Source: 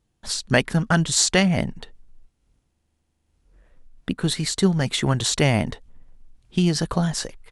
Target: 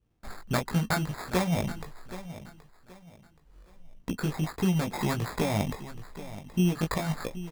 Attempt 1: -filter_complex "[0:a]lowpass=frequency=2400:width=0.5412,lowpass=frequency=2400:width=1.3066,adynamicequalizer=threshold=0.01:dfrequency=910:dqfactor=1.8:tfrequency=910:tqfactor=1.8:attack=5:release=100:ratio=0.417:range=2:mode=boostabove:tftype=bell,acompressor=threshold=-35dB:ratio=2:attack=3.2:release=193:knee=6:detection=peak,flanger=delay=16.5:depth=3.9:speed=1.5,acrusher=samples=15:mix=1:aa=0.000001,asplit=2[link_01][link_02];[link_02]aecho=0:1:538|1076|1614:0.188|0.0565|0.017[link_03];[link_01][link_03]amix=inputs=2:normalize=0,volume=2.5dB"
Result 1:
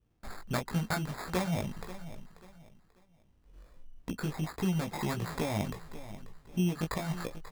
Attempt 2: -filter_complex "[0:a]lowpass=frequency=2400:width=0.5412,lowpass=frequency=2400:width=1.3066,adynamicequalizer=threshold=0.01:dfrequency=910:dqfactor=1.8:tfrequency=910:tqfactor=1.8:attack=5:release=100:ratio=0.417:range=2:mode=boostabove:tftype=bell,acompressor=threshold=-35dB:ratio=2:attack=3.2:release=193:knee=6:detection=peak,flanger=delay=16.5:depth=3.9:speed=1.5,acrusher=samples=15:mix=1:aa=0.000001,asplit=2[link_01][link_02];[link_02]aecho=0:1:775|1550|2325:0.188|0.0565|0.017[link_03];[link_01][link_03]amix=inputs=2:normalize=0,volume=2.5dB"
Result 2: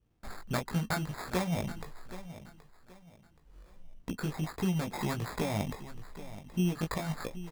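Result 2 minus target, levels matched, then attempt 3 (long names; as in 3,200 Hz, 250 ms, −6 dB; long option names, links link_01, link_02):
downward compressor: peak gain reduction +5 dB
-filter_complex "[0:a]lowpass=frequency=2400:width=0.5412,lowpass=frequency=2400:width=1.3066,adynamicequalizer=threshold=0.01:dfrequency=910:dqfactor=1.8:tfrequency=910:tqfactor=1.8:attack=5:release=100:ratio=0.417:range=2:mode=boostabove:tftype=bell,acompressor=threshold=-25.5dB:ratio=2:attack=3.2:release=193:knee=6:detection=peak,flanger=delay=16.5:depth=3.9:speed=1.5,acrusher=samples=15:mix=1:aa=0.000001,asplit=2[link_01][link_02];[link_02]aecho=0:1:775|1550|2325:0.188|0.0565|0.017[link_03];[link_01][link_03]amix=inputs=2:normalize=0,volume=2.5dB"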